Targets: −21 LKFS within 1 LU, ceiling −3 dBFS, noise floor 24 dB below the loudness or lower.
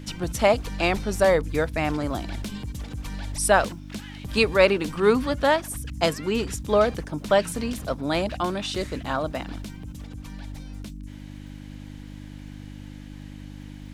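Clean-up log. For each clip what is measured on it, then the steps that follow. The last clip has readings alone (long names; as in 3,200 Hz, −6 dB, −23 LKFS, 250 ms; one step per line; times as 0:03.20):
crackle rate 41 per second; mains hum 50 Hz; hum harmonics up to 300 Hz; level of the hum −37 dBFS; integrated loudness −24.5 LKFS; sample peak −4.0 dBFS; target loudness −21.0 LKFS
→ click removal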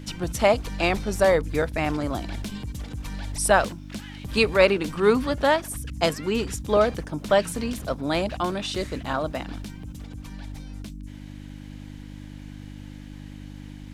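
crackle rate 1.1 per second; mains hum 50 Hz; hum harmonics up to 300 Hz; level of the hum −37 dBFS
→ hum removal 50 Hz, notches 6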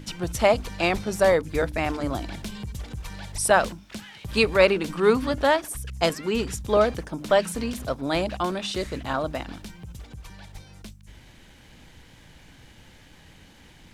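mains hum none found; integrated loudness −24.5 LKFS; sample peak −4.5 dBFS; target loudness −21.0 LKFS
→ level +3.5 dB
brickwall limiter −3 dBFS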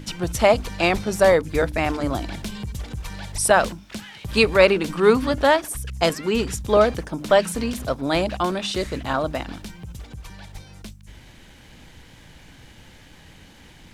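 integrated loudness −21.0 LKFS; sample peak −3.0 dBFS; background noise floor −48 dBFS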